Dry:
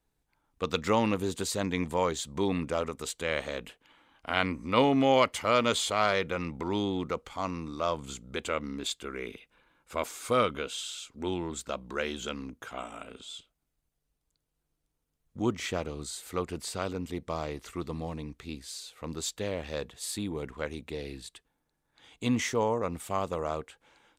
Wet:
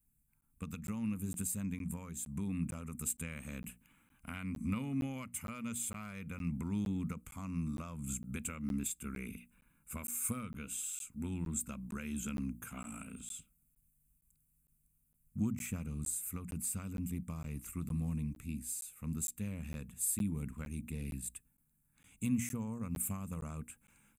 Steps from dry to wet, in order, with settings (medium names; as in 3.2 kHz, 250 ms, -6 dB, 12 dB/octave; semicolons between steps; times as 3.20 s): bass shelf 280 Hz -10 dB; hum notches 60/120/180/240/300 Hz; comb 0.8 ms, depth 34%; compression 6:1, threshold -34 dBFS, peak gain reduction 13.5 dB; FFT filter 230 Hz 0 dB, 350 Hz -21 dB, 910 Hz -25 dB, 2.5 kHz -17 dB, 3.8 kHz -30 dB, 5.4 kHz -23 dB, 8.2 kHz -3 dB, 14 kHz +2 dB; gain riding within 4 dB 2 s; crackling interface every 0.46 s, samples 512, zero, from 0.41 s; trim +9 dB